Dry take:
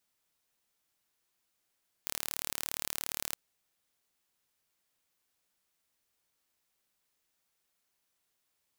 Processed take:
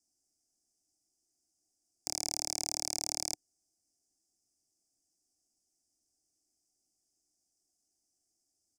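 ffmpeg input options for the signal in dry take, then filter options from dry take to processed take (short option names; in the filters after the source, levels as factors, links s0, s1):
-f lavfi -i "aevalsrc='0.422*eq(mod(n,1185),0)':d=1.27:s=44100"
-filter_complex "[0:a]firequalizer=gain_entry='entry(110,0);entry(160,-6);entry(310,8);entry(490,-6);entry(750,14);entry(1100,-17);entry(3300,-25);entry(4900,11);entry(8100,5);entry(15000,-18)':delay=0.05:min_phase=1,acrossover=split=280|520|5000[s0][s1][s2][s3];[s2]aeval=exprs='val(0)*gte(abs(val(0)),0.00944)':c=same[s4];[s0][s1][s4][s3]amix=inputs=4:normalize=0"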